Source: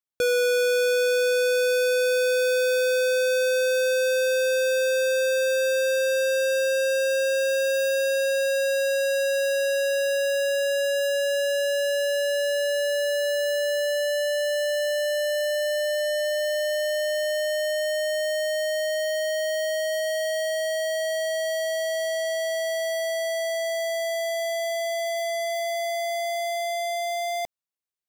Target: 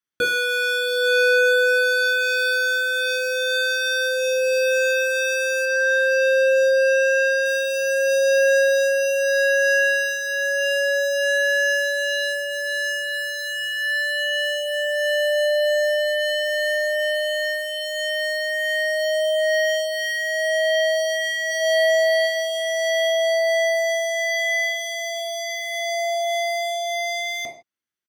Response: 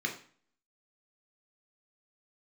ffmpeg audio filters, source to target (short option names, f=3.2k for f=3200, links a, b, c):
-filter_complex "[0:a]asettb=1/sr,asplit=3[a][b][c];[a]atrim=end=5.654[d];[b]atrim=start=5.65:end=7.46,asetpts=PTS-STARTPTS,afade=t=in:d=0.004:c=qsin,afade=t=out:st=1.806:d=0.004:c=qsin,highshelf=f=6.2k:g=-9.5[e];[c]atrim=start=7.456[f];[d][e]acrossfade=d=0.004:c1=hsin:c2=qsin[g];[g][f]acrossfade=d=0.004:c1=qsin:c2=hsin,asplit=3[h][i][j];[h]afade=t=out:st=21.5:d=0.02[k];[i]aecho=1:1:3.5:0.72,afade=t=in:st=21.5:d=0.02,afade=t=out:st=22.25:d=0.02[l];[j]afade=t=in:st=22.25:d=0.02[m];[k][l][m]amix=inputs=3:normalize=0[n];[1:a]atrim=start_sample=2205,afade=t=out:st=0.2:d=0.01,atrim=end_sample=9261,asetrate=39249,aresample=44100[o];[n][o]afir=irnorm=-1:irlink=0"